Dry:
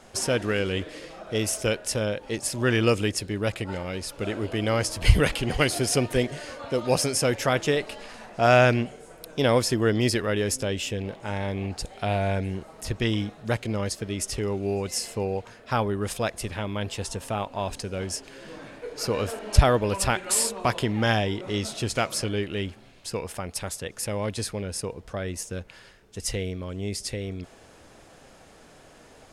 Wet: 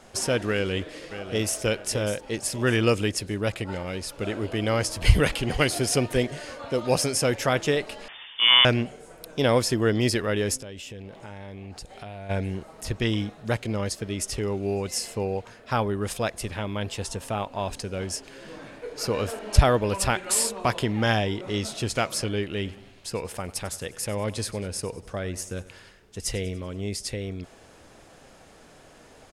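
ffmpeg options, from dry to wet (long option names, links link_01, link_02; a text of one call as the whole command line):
ffmpeg -i in.wav -filter_complex "[0:a]asplit=2[link_01][link_02];[link_02]afade=type=in:start_time=0.51:duration=0.01,afade=type=out:start_time=1.6:duration=0.01,aecho=0:1:600|1200|1800|2400:0.281838|0.0986434|0.0345252|0.0120838[link_03];[link_01][link_03]amix=inputs=2:normalize=0,asettb=1/sr,asplit=3[link_04][link_05][link_06];[link_04]atrim=end=8.084[link_07];[link_05]atrim=start=8.08:end=8.65,asetpts=PTS-STARTPTS,afade=type=in:duration=0.004:curve=qsin,afade=type=out:start_time=0.566:duration=0.004:curve=qsin,lowpass=frequency=3100:width_type=q:width=0.5098,lowpass=frequency=3100:width_type=q:width=0.6013,lowpass=frequency=3100:width_type=q:width=0.9,lowpass=frequency=3100:width_type=q:width=2.563,afreqshift=-3600[link_08];[link_06]atrim=start=8.646[link_09];[link_07][link_08]acrossfade=duration=0.004:curve1=hsin:curve2=qsin[link_10];[link_10][link_09]acrossfade=duration=0.004:curve1=qsin:curve2=hsin,asplit=3[link_11][link_12][link_13];[link_11]afade=type=out:start_time=10.57:duration=0.02[link_14];[link_12]acompressor=threshold=-37dB:ratio=5:attack=3.2:release=140:knee=1:detection=peak,afade=type=in:start_time=10.57:duration=0.02,afade=type=out:start_time=12.29:duration=0.02[link_15];[link_13]afade=type=in:start_time=12.29:duration=0.02[link_16];[link_14][link_15][link_16]amix=inputs=3:normalize=0,asettb=1/sr,asplit=3[link_17][link_18][link_19];[link_17]atrim=end=22.554[link_20];[link_18]atrim=start=22.55:end=26.87,asetpts=PTS-STARTPTS,afade=type=in:duration=0.004:curve=qsin,afade=type=out:start_time=4.316:duration=0.004:curve=qsin,aecho=1:1:96|192|288|384|480:0.126|0.068|0.0367|0.0198|0.0107,atrim=end_sample=190512[link_21];[link_19]atrim=start=26.866[link_22];[link_20][link_21]acrossfade=duration=0.004:curve1=hsin:curve2=qsin[link_23];[link_23][link_22]acrossfade=duration=0.004:curve1=qsin:curve2=hsin" out.wav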